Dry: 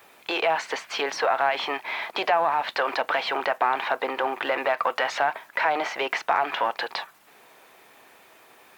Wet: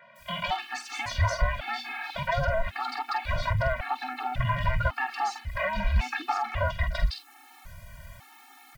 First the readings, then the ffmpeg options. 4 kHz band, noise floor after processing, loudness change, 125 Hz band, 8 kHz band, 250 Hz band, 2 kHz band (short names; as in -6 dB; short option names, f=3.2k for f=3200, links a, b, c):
-5.5 dB, -54 dBFS, -4.0 dB, n/a, -2.0 dB, -3.5 dB, -4.5 dB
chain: -filter_complex "[0:a]afftfilt=real='real(if(between(b,1,1008),(2*floor((b-1)/24)+1)*24-b,b),0)':imag='imag(if(between(b,1,1008),(2*floor((b-1)/24)+1)*24-b,b),0)*if(between(b,1,1008),-1,1)':win_size=2048:overlap=0.75,bandreject=f=60:t=h:w=6,bandreject=f=120:t=h:w=6,bandreject=f=180:t=h:w=6,bandreject=f=240:t=h:w=6,bandreject=f=300:t=h:w=6,bandreject=f=360:t=h:w=6,bandreject=f=420:t=h:w=6,bandreject=f=480:t=h:w=6,adynamicequalizer=threshold=0.00562:dfrequency=3200:dqfactor=2.8:tfrequency=3200:tqfactor=2.8:attack=5:release=100:ratio=0.375:range=3:mode=cutabove:tftype=bell,acrossover=split=170|3000[a][b][c];[c]adelay=160[d];[a]adelay=190[e];[e][b][d]amix=inputs=3:normalize=0,asplit=2[f][g];[g]acompressor=threshold=-35dB:ratio=20,volume=1.5dB[h];[f][h]amix=inputs=2:normalize=0,asubboost=boost=8.5:cutoff=120,acrossover=split=2100[i][j];[i]asoftclip=type=tanh:threshold=-13.5dB[k];[j]asplit=2[l][m];[m]adelay=47,volume=-7.5dB[n];[l][n]amix=inputs=2:normalize=0[o];[k][o]amix=inputs=2:normalize=0,afftfilt=real='re*gt(sin(2*PI*0.91*pts/sr)*(1-2*mod(floor(b*sr/1024/230),2)),0)':imag='im*gt(sin(2*PI*0.91*pts/sr)*(1-2*mod(floor(b*sr/1024/230),2)),0)':win_size=1024:overlap=0.75,volume=-1.5dB"